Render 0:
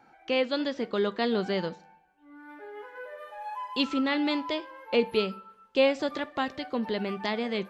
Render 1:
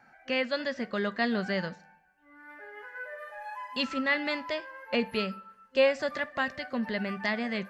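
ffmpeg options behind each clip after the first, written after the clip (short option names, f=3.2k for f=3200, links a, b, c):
-af "superequalizer=6b=0.355:7b=0.447:9b=0.631:11b=2:13b=0.562"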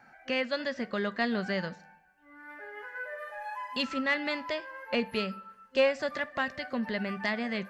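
-filter_complex "[0:a]asplit=2[a][b];[b]acompressor=threshold=-36dB:ratio=6,volume=-1dB[c];[a][c]amix=inputs=2:normalize=0,aeval=exprs='0.266*(cos(1*acos(clip(val(0)/0.266,-1,1)))-cos(1*PI/2))+0.015*(cos(3*acos(clip(val(0)/0.266,-1,1)))-cos(3*PI/2))':c=same,volume=-2dB"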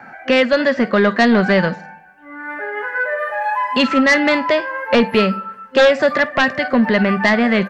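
-filter_complex "[0:a]acrossover=split=110|2700[a][b][c];[b]aeval=exprs='0.188*sin(PI/2*2.51*val(0)/0.188)':c=same[d];[c]asplit=2[e][f];[f]adelay=50,volume=-7dB[g];[e][g]amix=inputs=2:normalize=0[h];[a][d][h]amix=inputs=3:normalize=0,volume=7.5dB"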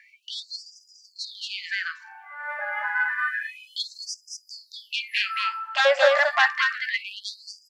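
-af "aecho=1:1:225:0.708,afftfilt=real='re*gte(b*sr/1024,530*pow(4900/530,0.5+0.5*sin(2*PI*0.29*pts/sr)))':imag='im*gte(b*sr/1024,530*pow(4900/530,0.5+0.5*sin(2*PI*0.29*pts/sr)))':win_size=1024:overlap=0.75,volume=-4dB"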